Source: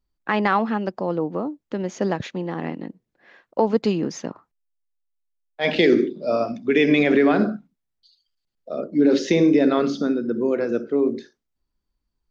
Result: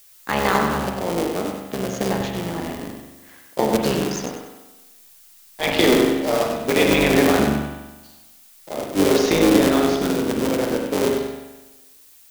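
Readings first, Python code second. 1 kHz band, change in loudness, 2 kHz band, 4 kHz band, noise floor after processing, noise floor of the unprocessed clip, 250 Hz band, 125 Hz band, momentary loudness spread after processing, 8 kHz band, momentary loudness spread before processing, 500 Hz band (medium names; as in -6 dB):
+3.0 dB, +1.0 dB, +2.5 dB, +7.0 dB, -50 dBFS, -80 dBFS, 0.0 dB, +3.5 dB, 15 LU, no reading, 14 LU, +1.5 dB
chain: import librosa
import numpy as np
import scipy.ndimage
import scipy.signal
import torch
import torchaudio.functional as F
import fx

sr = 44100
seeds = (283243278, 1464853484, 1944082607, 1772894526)

p1 = fx.cycle_switch(x, sr, every=3, mode='muted')
p2 = fx.high_shelf(p1, sr, hz=2600.0, db=10.0)
p3 = fx.sample_hold(p2, sr, seeds[0], rate_hz=2700.0, jitter_pct=0)
p4 = p2 + F.gain(torch.from_numpy(p3), -9.0).numpy()
p5 = fx.rev_spring(p4, sr, rt60_s=1.1, pass_ms=(41,), chirp_ms=50, drr_db=3.5)
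p6 = fx.dmg_noise_colour(p5, sr, seeds[1], colour='blue', level_db=-48.0)
p7 = p6 + fx.echo_feedback(p6, sr, ms=97, feedback_pct=36, wet_db=-7, dry=0)
y = F.gain(torch.from_numpy(p7), -2.5).numpy()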